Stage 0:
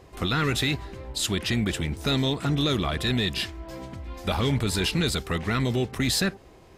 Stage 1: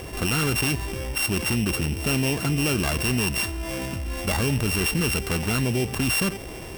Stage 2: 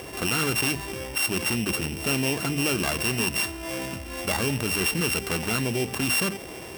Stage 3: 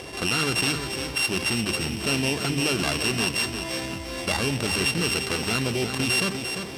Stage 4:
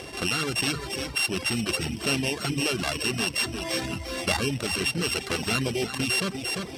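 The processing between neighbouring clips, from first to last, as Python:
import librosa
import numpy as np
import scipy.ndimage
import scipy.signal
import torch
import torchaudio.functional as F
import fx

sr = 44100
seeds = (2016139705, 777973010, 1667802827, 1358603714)

y1 = np.r_[np.sort(x[:len(x) // 16 * 16].reshape(-1, 16), axis=1).ravel(), x[len(x) // 16 * 16:]]
y1 = fx.peak_eq(y1, sr, hz=11000.0, db=3.5, octaves=1.0)
y1 = fx.env_flatten(y1, sr, amount_pct=50)
y2 = fx.highpass(y1, sr, hz=190.0, slope=6)
y2 = fx.hum_notches(y2, sr, base_hz=50, count=5)
y3 = scipy.signal.sosfilt(scipy.signal.butter(2, 9800.0, 'lowpass', fs=sr, output='sos'), y2)
y3 = fx.peak_eq(y3, sr, hz=4100.0, db=5.5, octaves=0.86)
y3 = fx.echo_feedback(y3, sr, ms=347, feedback_pct=34, wet_db=-7.5)
y4 = fx.dereverb_blind(y3, sr, rt60_s=0.93)
y4 = fx.notch(y4, sr, hz=950.0, q=21.0)
y4 = fx.rider(y4, sr, range_db=4, speed_s=0.5)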